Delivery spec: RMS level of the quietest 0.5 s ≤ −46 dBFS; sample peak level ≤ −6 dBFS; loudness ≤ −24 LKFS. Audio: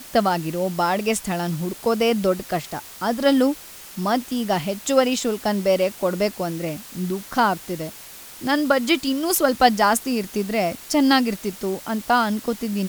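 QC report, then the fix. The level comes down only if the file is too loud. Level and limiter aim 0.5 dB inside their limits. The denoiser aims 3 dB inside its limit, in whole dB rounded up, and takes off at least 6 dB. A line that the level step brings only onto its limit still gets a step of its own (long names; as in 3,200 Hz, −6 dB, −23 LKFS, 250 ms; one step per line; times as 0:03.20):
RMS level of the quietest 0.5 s −41 dBFS: out of spec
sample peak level −2.0 dBFS: out of spec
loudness −22.0 LKFS: out of spec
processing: broadband denoise 6 dB, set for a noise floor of −41 dBFS
level −2.5 dB
brickwall limiter −6.5 dBFS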